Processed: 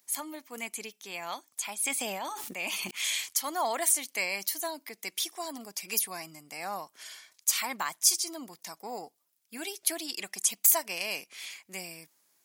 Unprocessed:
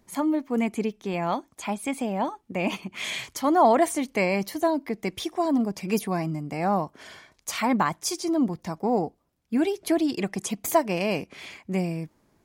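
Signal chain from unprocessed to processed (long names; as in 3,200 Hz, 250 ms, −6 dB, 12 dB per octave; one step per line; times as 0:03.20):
first difference
0:01.80–0:02.91: level that may fall only so fast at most 24 dB per second
level +7.5 dB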